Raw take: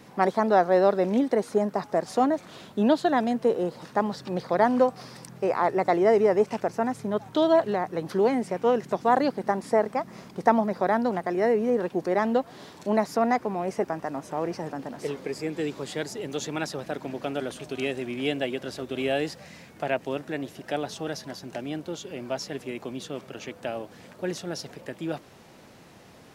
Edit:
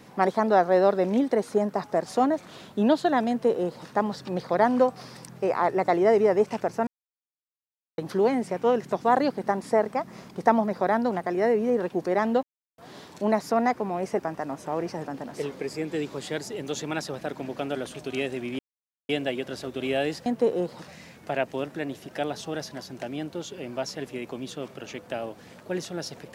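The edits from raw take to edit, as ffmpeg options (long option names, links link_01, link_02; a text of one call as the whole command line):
ffmpeg -i in.wav -filter_complex "[0:a]asplit=7[link_01][link_02][link_03][link_04][link_05][link_06][link_07];[link_01]atrim=end=6.87,asetpts=PTS-STARTPTS,afade=type=out:start_time=6.866:duration=0.004:curve=hsin[link_08];[link_02]atrim=start=6.87:end=7.98,asetpts=PTS-STARTPTS,volume=0[link_09];[link_03]atrim=start=7.98:end=12.43,asetpts=PTS-STARTPTS,afade=type=in:duration=0.004:curve=hsin,afade=type=out:start_time=4.446:duration=0.004:curve=hsin,apad=pad_dur=0.35[link_10];[link_04]atrim=start=12.43:end=18.24,asetpts=PTS-STARTPTS,afade=type=in:duration=0.004:curve=hsin,afade=type=out:start_time=5.806:duration=0.004:curve=hsin,apad=pad_dur=0.5[link_11];[link_05]atrim=start=18.24:end=19.412,asetpts=PTS-STARTPTS,afade=type=in:duration=0.004:curve=hsin[link_12];[link_06]atrim=start=3.288:end=3.912[link_13];[link_07]atrim=start=19.408[link_14];[link_08][link_09][link_10][link_11][link_12]concat=n=5:v=0:a=1[link_15];[link_15][link_13]acrossfade=duration=0.004:curve1=hsin:curve2=hsin[link_16];[link_16][link_14]acrossfade=duration=0.004:curve1=hsin:curve2=hsin" out.wav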